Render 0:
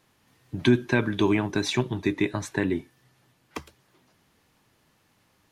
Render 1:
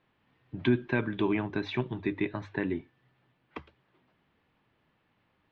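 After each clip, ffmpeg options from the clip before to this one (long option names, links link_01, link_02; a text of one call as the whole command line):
ffmpeg -i in.wav -af "lowpass=frequency=3300:width=0.5412,lowpass=frequency=3300:width=1.3066,bandreject=frequency=50:width_type=h:width=6,bandreject=frequency=100:width_type=h:width=6,volume=-5.5dB" out.wav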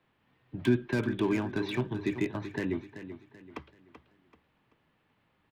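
ffmpeg -i in.wav -filter_complex "[0:a]acrossover=split=120|510[link_01][link_02][link_03];[link_03]asoftclip=type=hard:threshold=-33dB[link_04];[link_01][link_02][link_04]amix=inputs=3:normalize=0,aecho=1:1:384|768|1152|1536:0.266|0.0958|0.0345|0.0124" out.wav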